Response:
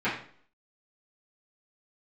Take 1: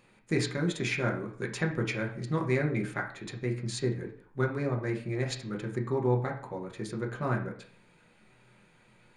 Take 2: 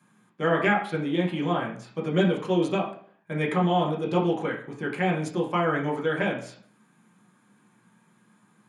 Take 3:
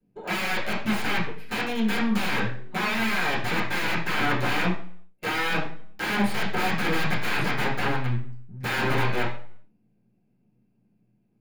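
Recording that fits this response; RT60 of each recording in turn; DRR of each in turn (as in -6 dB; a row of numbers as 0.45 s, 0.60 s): 3; 0.50 s, 0.50 s, 0.50 s; 0.5 dB, -3.5 dB, -13.5 dB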